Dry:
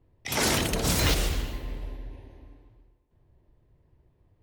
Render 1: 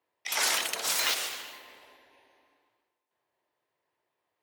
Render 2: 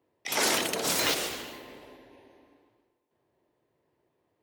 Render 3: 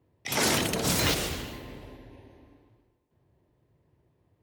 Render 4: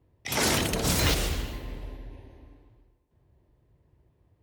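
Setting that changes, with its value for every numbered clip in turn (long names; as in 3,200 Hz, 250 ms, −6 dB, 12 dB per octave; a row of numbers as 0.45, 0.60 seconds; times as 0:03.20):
high-pass filter, corner frequency: 910, 340, 110, 44 Hertz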